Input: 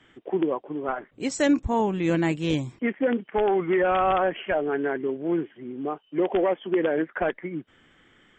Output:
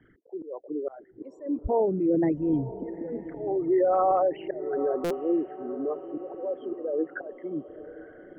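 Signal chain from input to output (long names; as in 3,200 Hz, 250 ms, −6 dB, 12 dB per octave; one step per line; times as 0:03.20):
spectral envelope exaggerated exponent 3
volume swells 317 ms
low-pass filter 1,400 Hz 12 dB per octave
feedback delay with all-pass diffusion 920 ms, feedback 47%, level −14 dB
buffer that repeats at 0:05.04, samples 256, times 10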